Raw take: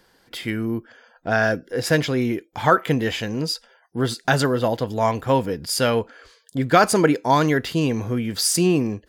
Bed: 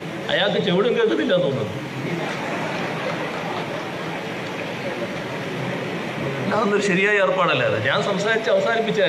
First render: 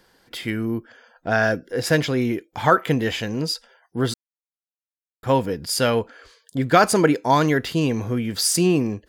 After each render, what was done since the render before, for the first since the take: 4.14–5.23 mute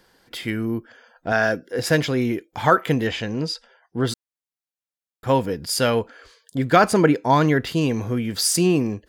1.32–1.79 HPF 160 Hz 6 dB/oct; 3.07–4.07 air absorption 64 m; 6.76–7.67 tone controls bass +3 dB, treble -6 dB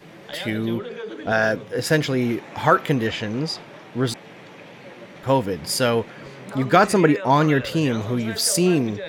add bed -14.5 dB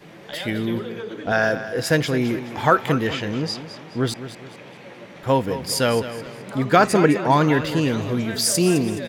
feedback echo 0.211 s, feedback 38%, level -12.5 dB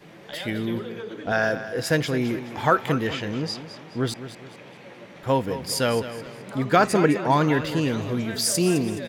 gain -3 dB

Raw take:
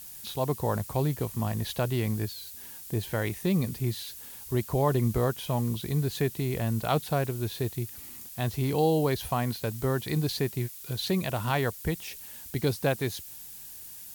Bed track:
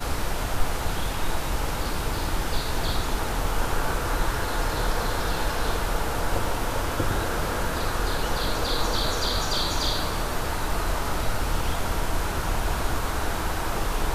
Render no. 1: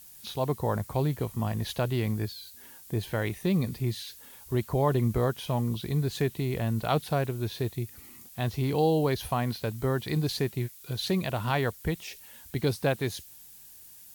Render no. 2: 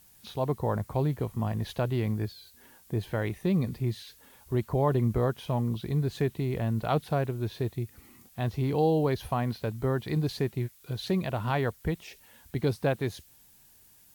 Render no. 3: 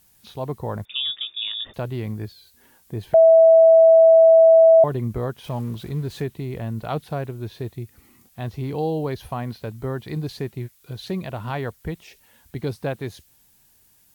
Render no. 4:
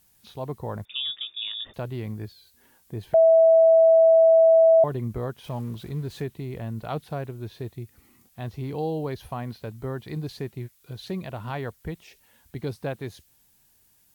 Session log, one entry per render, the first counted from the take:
noise print and reduce 6 dB
high shelf 2700 Hz -8.5 dB
0.85–1.74 inverted band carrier 3600 Hz; 3.14–4.84 bleep 653 Hz -8 dBFS; 5.44–6.24 zero-crossing step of -41.5 dBFS
gain -4 dB

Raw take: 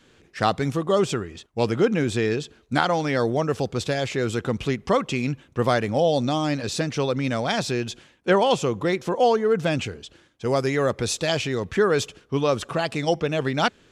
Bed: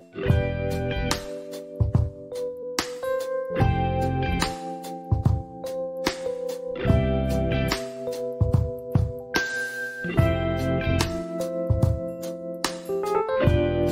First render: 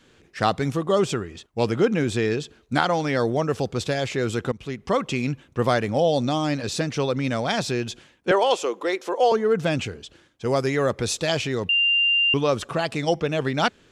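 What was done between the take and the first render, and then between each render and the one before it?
4.52–5.05 fade in, from -15.5 dB; 8.31–9.32 HPF 340 Hz 24 dB/oct; 11.69–12.34 bleep 2790 Hz -16.5 dBFS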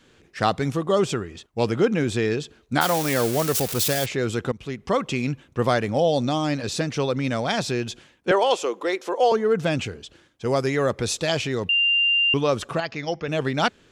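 2.81–4.06 switching spikes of -15.5 dBFS; 12.8–13.28 rippled Chebyshev low-pass 6800 Hz, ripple 6 dB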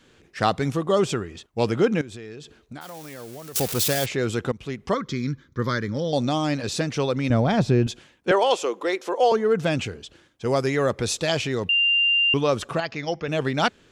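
2.01–3.56 compressor, threshold -36 dBFS; 4.94–6.13 fixed phaser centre 2700 Hz, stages 6; 7.3–7.87 tilt -3.5 dB/oct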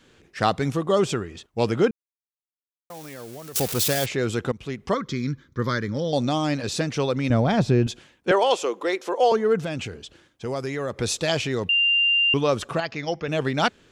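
1.91–2.9 mute; 9.59–10.97 compressor 2:1, threshold -29 dBFS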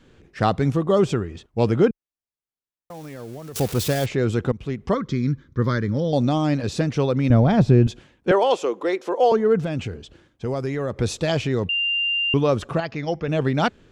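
tilt -2 dB/oct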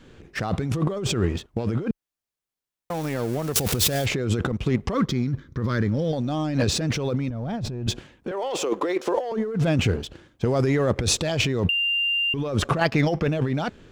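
sample leveller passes 1; negative-ratio compressor -24 dBFS, ratio -1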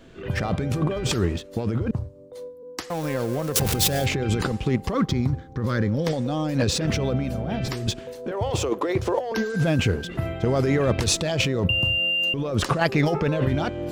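add bed -7.5 dB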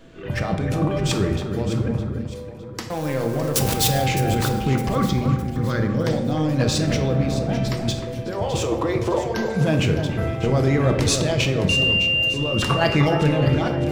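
echo with dull and thin repeats by turns 0.305 s, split 1900 Hz, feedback 62%, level -7 dB; shoebox room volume 310 m³, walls mixed, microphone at 0.64 m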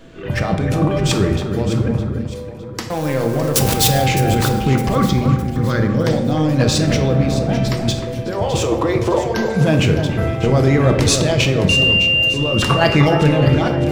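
gain +5 dB

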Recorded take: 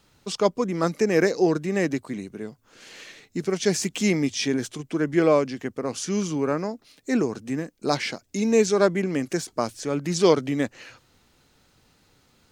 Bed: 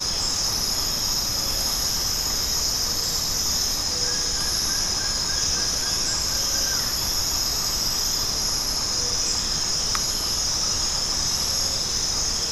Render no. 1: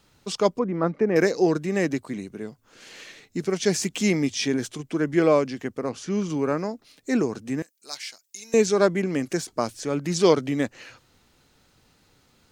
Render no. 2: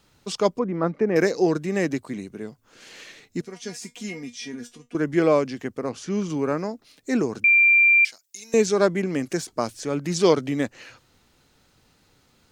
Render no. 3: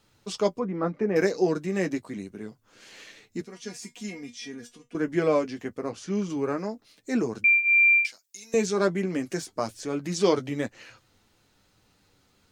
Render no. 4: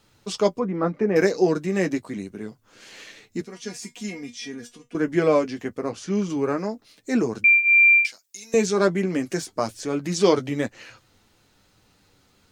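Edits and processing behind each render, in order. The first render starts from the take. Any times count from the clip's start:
0.59–1.16 LPF 1600 Hz; 5.89–6.3 LPF 2200 Hz 6 dB/oct; 7.62–8.54 differentiator
3.41–4.95 resonator 240 Hz, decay 0.16 s, mix 90%; 7.44–8.05 bleep 2370 Hz -12.5 dBFS
flange 0.28 Hz, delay 9 ms, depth 1.8 ms, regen -33%
gain +4 dB

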